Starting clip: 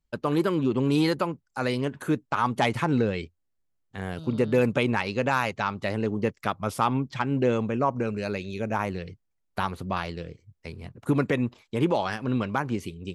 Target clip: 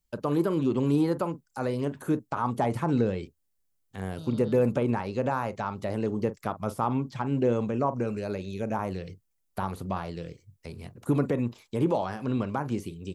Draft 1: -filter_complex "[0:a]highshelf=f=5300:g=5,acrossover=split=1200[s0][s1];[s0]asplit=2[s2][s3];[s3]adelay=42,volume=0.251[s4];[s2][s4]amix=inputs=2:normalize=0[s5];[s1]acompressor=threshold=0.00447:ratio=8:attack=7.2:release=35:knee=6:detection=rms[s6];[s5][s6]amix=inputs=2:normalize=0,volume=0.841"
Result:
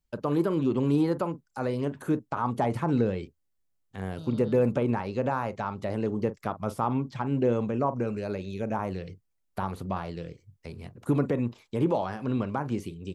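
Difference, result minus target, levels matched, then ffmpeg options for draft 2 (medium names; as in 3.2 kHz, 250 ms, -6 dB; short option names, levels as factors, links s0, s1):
8 kHz band -3.0 dB
-filter_complex "[0:a]highshelf=f=5300:g=13.5,acrossover=split=1200[s0][s1];[s0]asplit=2[s2][s3];[s3]adelay=42,volume=0.251[s4];[s2][s4]amix=inputs=2:normalize=0[s5];[s1]acompressor=threshold=0.00447:ratio=8:attack=7.2:release=35:knee=6:detection=rms[s6];[s5][s6]amix=inputs=2:normalize=0,volume=0.841"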